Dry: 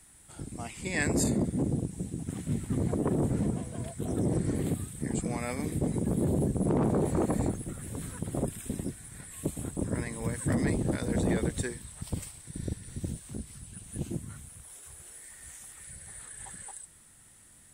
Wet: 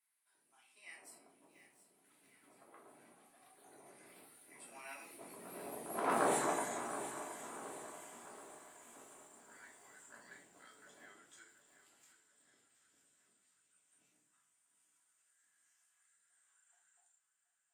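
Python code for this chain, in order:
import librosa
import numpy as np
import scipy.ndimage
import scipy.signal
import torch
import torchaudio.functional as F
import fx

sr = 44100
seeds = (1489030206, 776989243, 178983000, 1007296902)

y = fx.doppler_pass(x, sr, speed_mps=37, closest_m=5.5, pass_at_s=6.27)
y = scipy.signal.sosfilt(scipy.signal.butter(2, 1400.0, 'highpass', fs=sr, output='sos'), y)
y = fx.high_shelf(y, sr, hz=2100.0, db=-9.0)
y = fx.echo_feedback(y, sr, ms=725, feedback_pct=47, wet_db=-13.0)
y = fx.room_shoebox(y, sr, seeds[0], volume_m3=350.0, walls='furnished', distance_m=3.0)
y = fx.echo_crushed(y, sr, ms=683, feedback_pct=55, bits=12, wet_db=-14.5)
y = y * 10.0 ** (11.0 / 20.0)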